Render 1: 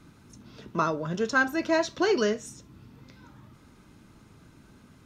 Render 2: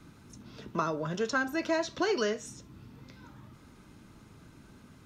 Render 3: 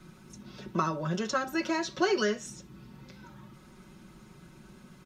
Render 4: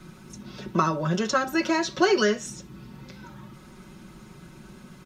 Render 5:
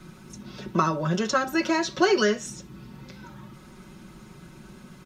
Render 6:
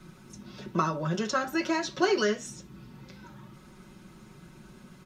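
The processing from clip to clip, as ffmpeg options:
ffmpeg -i in.wav -filter_complex "[0:a]acrossover=split=450|7100[link_01][link_02][link_03];[link_01]acompressor=threshold=-34dB:ratio=4[link_04];[link_02]acompressor=threshold=-28dB:ratio=4[link_05];[link_03]acompressor=threshold=-53dB:ratio=4[link_06];[link_04][link_05][link_06]amix=inputs=3:normalize=0" out.wav
ffmpeg -i in.wav -af "aecho=1:1:5.4:0.8" out.wav
ffmpeg -i in.wav -af "asoftclip=type=hard:threshold=-15dB,volume=6dB" out.wav
ffmpeg -i in.wav -af anull out.wav
ffmpeg -i in.wav -af "flanger=delay=4.4:depth=7.5:regen=-72:speed=1.1:shape=triangular" out.wav

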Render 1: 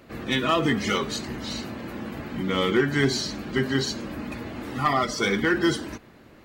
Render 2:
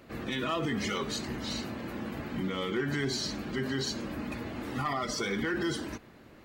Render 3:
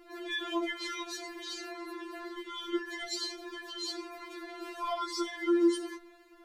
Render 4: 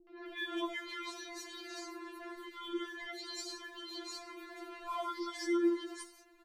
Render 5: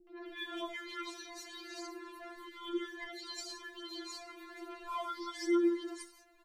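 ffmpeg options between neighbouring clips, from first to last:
ffmpeg -i in.wav -af "alimiter=limit=-20.5dB:level=0:latency=1:release=61,volume=-3dB" out.wav
ffmpeg -i in.wav -af "afftfilt=real='re*4*eq(mod(b,16),0)':imag='im*4*eq(mod(b,16),0)':win_size=2048:overlap=0.75" out.wav
ffmpeg -i in.wav -filter_complex "[0:a]acrossover=split=450|4100[link_01][link_02][link_03];[link_02]adelay=70[link_04];[link_03]adelay=260[link_05];[link_01][link_04][link_05]amix=inputs=3:normalize=0,volume=-3.5dB" out.wav
ffmpeg -i in.wav -af "flanger=delay=5.2:depth=5:regen=31:speed=0.35:shape=triangular,volume=3dB" out.wav

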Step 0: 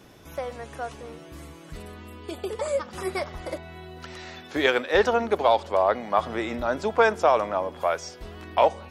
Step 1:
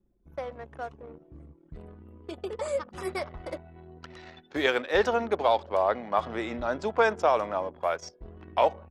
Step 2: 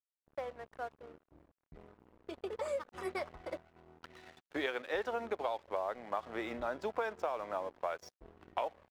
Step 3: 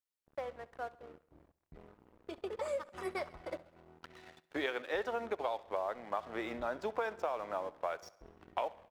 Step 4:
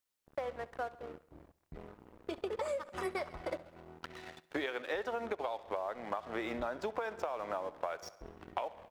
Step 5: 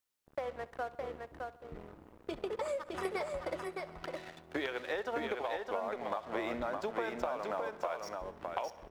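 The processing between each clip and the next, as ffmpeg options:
ffmpeg -i in.wav -af "anlmdn=1,volume=-3.5dB" out.wav
ffmpeg -i in.wav -af "bass=frequency=250:gain=-7,treble=frequency=4000:gain=-6,acompressor=threshold=-28dB:ratio=10,aeval=exprs='sgn(val(0))*max(abs(val(0))-0.00211,0)':channel_layout=same,volume=-3.5dB" out.wav
ffmpeg -i in.wav -af "aecho=1:1:67|134|201|268|335:0.0944|0.0548|0.0318|0.0184|0.0107" out.wav
ffmpeg -i in.wav -af "acompressor=threshold=-40dB:ratio=6,volume=6.5dB" out.wav
ffmpeg -i in.wav -af "aecho=1:1:613:0.631" out.wav

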